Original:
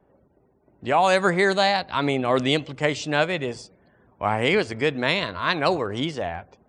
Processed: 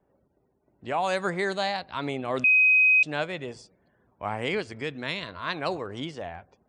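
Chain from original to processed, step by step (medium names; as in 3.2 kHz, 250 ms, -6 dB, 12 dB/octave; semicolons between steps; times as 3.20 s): 2.44–3.03 s: bleep 2.52 kHz -7.5 dBFS; 4.60–5.27 s: dynamic bell 690 Hz, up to -5 dB, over -33 dBFS, Q 0.83; trim -8 dB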